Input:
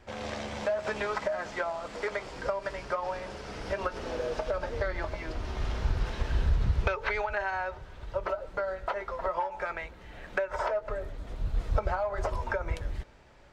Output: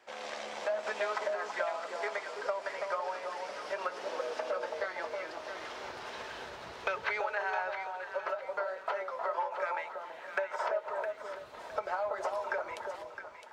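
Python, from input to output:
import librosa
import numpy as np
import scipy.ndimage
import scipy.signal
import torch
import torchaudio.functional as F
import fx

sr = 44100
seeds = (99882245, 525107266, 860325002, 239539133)

p1 = scipy.signal.sosfilt(scipy.signal.butter(2, 530.0, 'highpass', fs=sr, output='sos'), x)
p2 = p1 + fx.echo_alternate(p1, sr, ms=331, hz=1100.0, feedback_pct=55, wet_db=-3, dry=0)
y = p2 * 10.0 ** (-2.0 / 20.0)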